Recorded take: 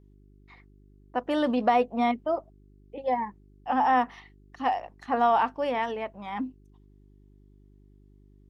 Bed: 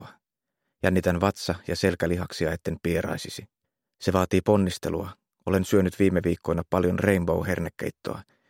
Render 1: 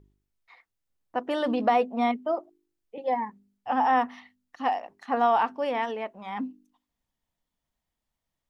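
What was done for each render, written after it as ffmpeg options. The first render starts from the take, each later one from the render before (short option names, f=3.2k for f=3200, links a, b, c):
-af "bandreject=f=50:t=h:w=4,bandreject=f=100:t=h:w=4,bandreject=f=150:t=h:w=4,bandreject=f=200:t=h:w=4,bandreject=f=250:t=h:w=4,bandreject=f=300:t=h:w=4,bandreject=f=350:t=h:w=4,bandreject=f=400:t=h:w=4"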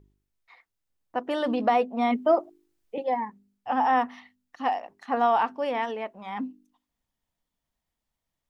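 -filter_complex "[0:a]asplit=3[a][b][c];[a]afade=t=out:st=2.11:d=0.02[d];[b]acontrast=84,afade=t=in:st=2.11:d=0.02,afade=t=out:st=3.02:d=0.02[e];[c]afade=t=in:st=3.02:d=0.02[f];[d][e][f]amix=inputs=3:normalize=0"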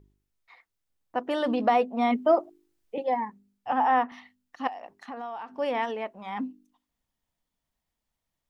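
-filter_complex "[0:a]asettb=1/sr,asplit=3[a][b][c];[a]atrim=end=3.724[d];[b]atrim=start=3.72:end=4.12,asetpts=PTS-STARTPTS,afade=t=in:d=0.004:c=qsin,afade=t=out:st=0.396:d=0.004:c=qsin,highpass=230,lowpass=3.3k[e];[c]atrim=start=4.116[f];[d][e]acrossfade=d=0.004:c1=hsin:c2=qsin[g];[g][f]acrossfade=d=0.004:c1=qsin:c2=hsin,asettb=1/sr,asplit=3[h][i][j];[h]atrim=end=4.674[k];[i]atrim=start=4.67:end=5.59,asetpts=PTS-STARTPTS,afade=t=in:d=0.004:c=qsin,afade=t=out:st=0.916:d=0.004:c=qsin,acompressor=threshold=-36dB:ratio=5:attack=3.2:release=140:knee=1:detection=peak[l];[j]atrim=start=5.586[m];[k][l]acrossfade=d=0.004:c1=hsin:c2=qsin[n];[n][m]acrossfade=d=0.004:c1=qsin:c2=hsin"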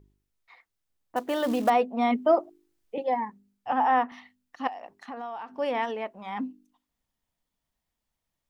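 -filter_complex "[0:a]asettb=1/sr,asplit=3[a][b][c];[a]atrim=end=1.164[d];[b]atrim=start=1.16:end=1.7,asetpts=PTS-STARTPTS,afade=t=in:d=0.004:c=qsin,afade=t=out:st=0.536:d=0.004:c=qsin,acrusher=bits=5:mode=log:mix=0:aa=0.000001[e];[c]atrim=start=1.696[f];[d][e]acrossfade=d=0.004:c1=hsin:c2=qsin[g];[g][f]acrossfade=d=0.004:c1=qsin:c2=hsin"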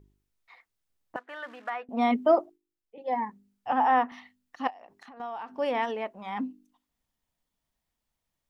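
-filter_complex "[0:a]asettb=1/sr,asplit=3[a][b][c];[a]atrim=end=1.164[d];[b]atrim=start=1.16:end=1.89,asetpts=PTS-STARTPTS,afade=t=in:d=0.004:c=qsin,afade=t=out:st=0.726:d=0.004:c=qsin,bandpass=f=1.6k:t=q:w=2.8[e];[c]atrim=start=1.886[f];[d][e]acrossfade=d=0.004:c1=hsin:c2=qsin[g];[g][f]acrossfade=d=0.004:c1=qsin:c2=hsin,asettb=1/sr,asplit=3[h][i][j];[h]atrim=end=4.704[k];[i]atrim=start=4.7:end=5.2,asetpts=PTS-STARTPTS,afade=t=in:d=0.004:c=qsin,afade=t=out:st=0.496:d=0.004:c=qsin,acompressor=threshold=-46dB:ratio=6:attack=3.2:release=140:knee=1:detection=peak[l];[j]atrim=start=5.196[m];[k][l]acrossfade=d=0.004:c1=hsin:c2=qsin[n];[n][m]acrossfade=d=0.004:c1=qsin:c2=hsin,asplit=3[o][p][q];[o]atrim=end=2.59,asetpts=PTS-STARTPTS,afade=t=out:st=2.4:d=0.19:silence=0.16788[r];[p]atrim=start=2.59:end=2.99,asetpts=PTS-STARTPTS,volume=-15.5dB[s];[q]atrim=start=2.99,asetpts=PTS-STARTPTS,afade=t=in:d=0.19:silence=0.16788[t];[r][s][t]concat=n=3:v=0:a=1"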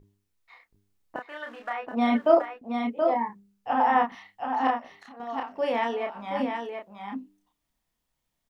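-filter_complex "[0:a]asplit=2[a][b];[b]adelay=30,volume=-3dB[c];[a][c]amix=inputs=2:normalize=0,aecho=1:1:726:0.531"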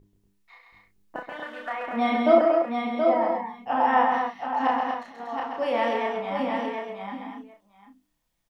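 -filter_complex "[0:a]asplit=2[a][b];[b]adelay=36,volume=-7.5dB[c];[a][c]amix=inputs=2:normalize=0,aecho=1:1:132|237|747:0.562|0.501|0.141"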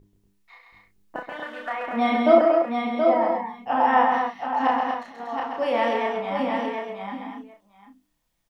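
-af "volume=2dB"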